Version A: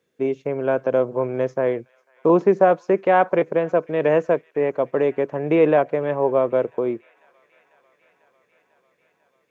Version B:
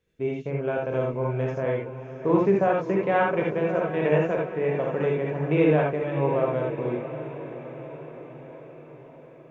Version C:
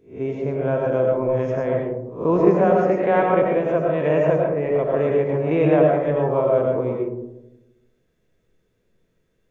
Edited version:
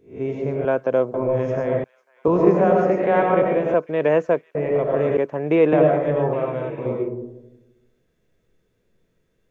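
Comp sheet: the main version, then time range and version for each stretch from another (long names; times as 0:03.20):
C
0:00.65–0:01.14: punch in from A
0:01.84–0:02.28: punch in from A
0:03.74–0:04.55: punch in from A
0:05.17–0:05.73: punch in from A
0:06.33–0:06.86: punch in from B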